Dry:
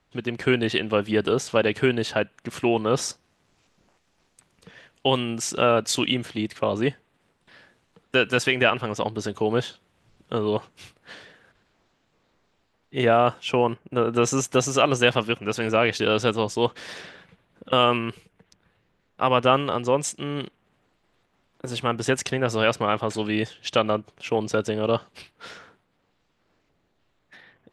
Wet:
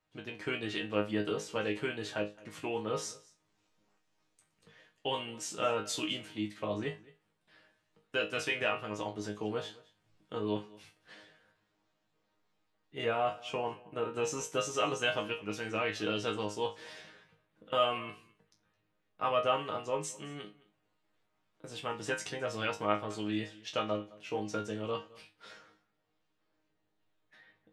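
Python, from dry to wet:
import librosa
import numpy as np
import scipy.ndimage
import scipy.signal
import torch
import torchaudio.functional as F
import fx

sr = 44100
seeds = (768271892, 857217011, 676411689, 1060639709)

y = fx.low_shelf(x, sr, hz=130.0, db=-4.0)
y = fx.resonator_bank(y, sr, root=44, chord='fifth', decay_s=0.25)
y = y + 10.0 ** (-22.0 / 20.0) * np.pad(y, (int(215 * sr / 1000.0), 0))[:len(y)]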